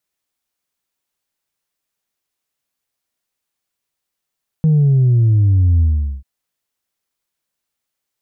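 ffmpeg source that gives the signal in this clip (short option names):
-f lavfi -i "aevalsrc='0.335*clip((1.59-t)/0.42,0,1)*tanh(1.12*sin(2*PI*160*1.59/log(65/160)*(exp(log(65/160)*t/1.59)-1)))/tanh(1.12)':d=1.59:s=44100"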